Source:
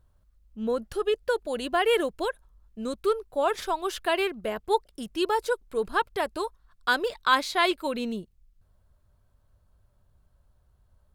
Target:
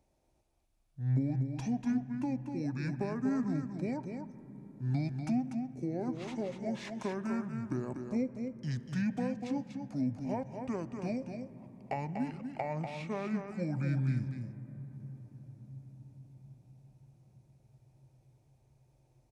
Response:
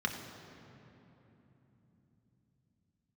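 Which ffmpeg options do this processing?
-filter_complex "[0:a]highpass=140,acrossover=split=300[link_01][link_02];[link_02]acompressor=threshold=-38dB:ratio=10[link_03];[link_01][link_03]amix=inputs=2:normalize=0,aecho=1:1:140:0.473,asplit=2[link_04][link_05];[1:a]atrim=start_sample=2205,asetrate=40572,aresample=44100[link_06];[link_05][link_06]afir=irnorm=-1:irlink=0,volume=-14.5dB[link_07];[link_04][link_07]amix=inputs=2:normalize=0,asetrate=25442,aresample=44100"

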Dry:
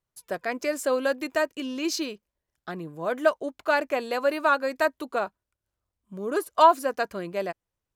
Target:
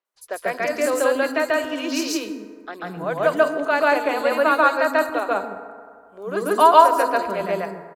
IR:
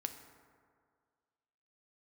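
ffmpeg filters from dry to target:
-filter_complex "[0:a]acrossover=split=330|4600[link_01][link_02][link_03];[link_03]adelay=50[link_04];[link_01]adelay=150[link_05];[link_05][link_02][link_04]amix=inputs=3:normalize=0,asplit=2[link_06][link_07];[1:a]atrim=start_sample=2205,adelay=140[link_08];[link_07][link_08]afir=irnorm=-1:irlink=0,volume=3.5dB[link_09];[link_06][link_09]amix=inputs=2:normalize=0,volume=2.5dB"

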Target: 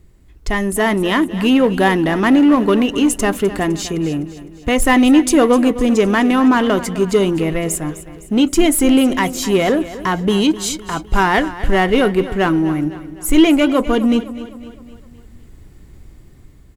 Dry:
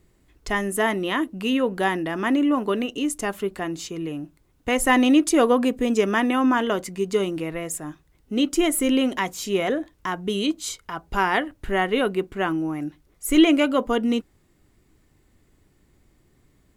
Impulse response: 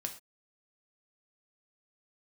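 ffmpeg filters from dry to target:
-filter_complex "[0:a]lowshelf=frequency=140:gain=11.5,dynaudnorm=framelen=380:gausssize=5:maxgain=7.5dB,asplit=2[link_01][link_02];[link_02]asoftclip=type=hard:threshold=-19dB,volume=-3dB[link_03];[link_01][link_03]amix=inputs=2:normalize=0,aecho=1:1:255|510|765|1020|1275:0.178|0.0889|0.0445|0.0222|0.0111,volume=-1dB"

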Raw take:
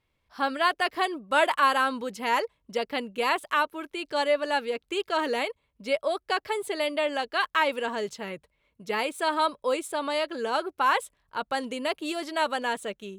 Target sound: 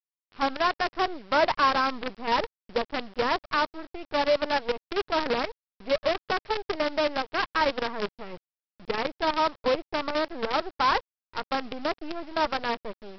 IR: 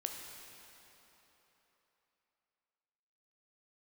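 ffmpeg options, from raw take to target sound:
-af "lowpass=1500,lowshelf=frequency=500:gain=2.5,aresample=11025,acrusher=bits=5:dc=4:mix=0:aa=0.000001,aresample=44100"

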